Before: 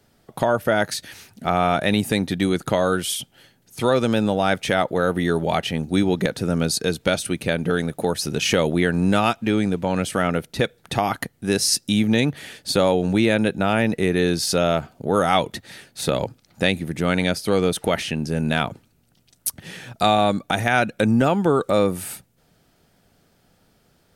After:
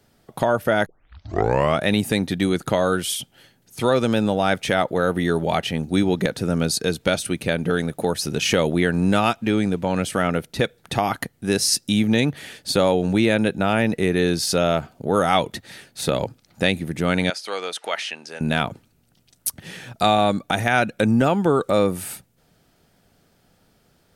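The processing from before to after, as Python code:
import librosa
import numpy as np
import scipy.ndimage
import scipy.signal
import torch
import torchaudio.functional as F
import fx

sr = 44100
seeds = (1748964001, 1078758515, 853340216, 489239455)

y = fx.bandpass_edges(x, sr, low_hz=790.0, high_hz=7000.0, at=(17.3, 18.41))
y = fx.edit(y, sr, fx.tape_start(start_s=0.86, length_s=0.95), tone=tone)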